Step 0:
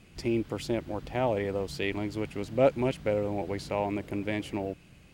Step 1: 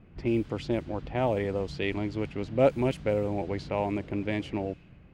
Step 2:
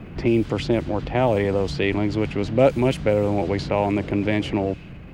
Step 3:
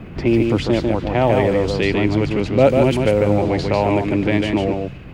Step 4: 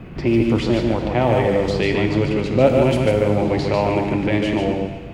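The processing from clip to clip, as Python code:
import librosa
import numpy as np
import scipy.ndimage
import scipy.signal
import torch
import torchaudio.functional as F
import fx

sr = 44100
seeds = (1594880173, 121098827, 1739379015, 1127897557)

y1 = fx.env_lowpass(x, sr, base_hz=1400.0, full_db=-23.5)
y1 = fx.low_shelf(y1, sr, hz=240.0, db=3.5)
y2 = fx.transient(y1, sr, attack_db=0, sustain_db=4)
y2 = fx.band_squash(y2, sr, depth_pct=40)
y2 = F.gain(torch.from_numpy(y2), 7.5).numpy()
y3 = y2 + 10.0 ** (-4.0 / 20.0) * np.pad(y2, (int(146 * sr / 1000.0), 0))[:len(y2)]
y3 = F.gain(torch.from_numpy(y3), 3.0).numpy()
y4 = fx.rev_plate(y3, sr, seeds[0], rt60_s=1.4, hf_ratio=1.0, predelay_ms=0, drr_db=5.0)
y4 = F.gain(torch.from_numpy(y4), -2.0).numpy()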